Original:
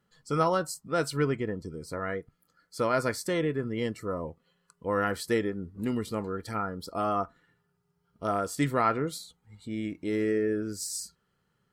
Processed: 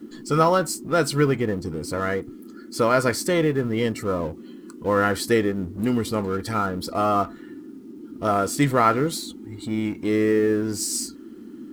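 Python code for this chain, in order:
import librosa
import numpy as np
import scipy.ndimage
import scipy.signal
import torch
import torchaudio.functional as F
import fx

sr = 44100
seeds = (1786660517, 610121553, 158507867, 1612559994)

y = fx.law_mismatch(x, sr, coded='mu')
y = fx.dmg_noise_band(y, sr, seeds[0], low_hz=210.0, high_hz=360.0, level_db=-46.0)
y = F.gain(torch.from_numpy(y), 6.5).numpy()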